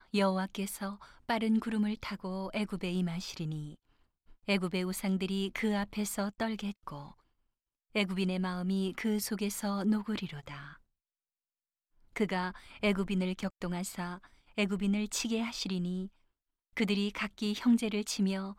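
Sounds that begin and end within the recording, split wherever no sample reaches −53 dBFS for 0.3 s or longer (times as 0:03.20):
0:04.29–0:07.14
0:07.95–0:10.76
0:12.14–0:16.09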